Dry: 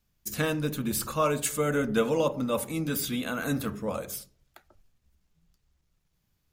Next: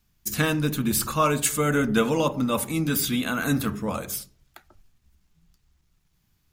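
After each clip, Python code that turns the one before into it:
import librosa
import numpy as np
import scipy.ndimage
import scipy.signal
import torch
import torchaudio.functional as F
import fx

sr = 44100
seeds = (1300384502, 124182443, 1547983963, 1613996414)

y = fx.peak_eq(x, sr, hz=530.0, db=-7.0, octaves=0.6)
y = y * 10.0 ** (6.0 / 20.0)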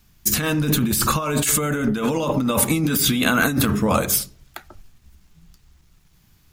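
y = fx.over_compress(x, sr, threshold_db=-28.0, ratio=-1.0)
y = y * 10.0 ** (8.0 / 20.0)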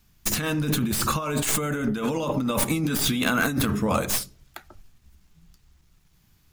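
y = fx.tracing_dist(x, sr, depth_ms=0.054)
y = y * 10.0 ** (-4.5 / 20.0)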